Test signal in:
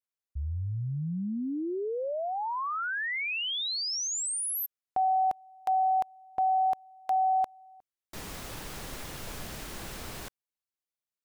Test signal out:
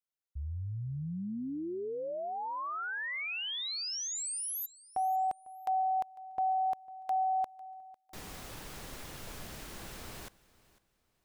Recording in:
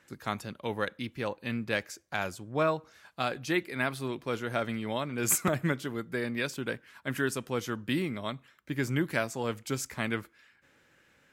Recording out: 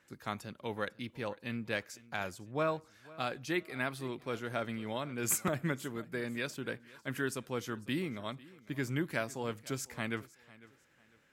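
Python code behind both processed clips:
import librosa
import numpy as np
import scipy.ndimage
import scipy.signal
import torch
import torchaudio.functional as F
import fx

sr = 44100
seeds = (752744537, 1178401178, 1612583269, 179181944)

y = fx.echo_feedback(x, sr, ms=500, feedback_pct=30, wet_db=-21.0)
y = F.gain(torch.from_numpy(y), -5.0).numpy()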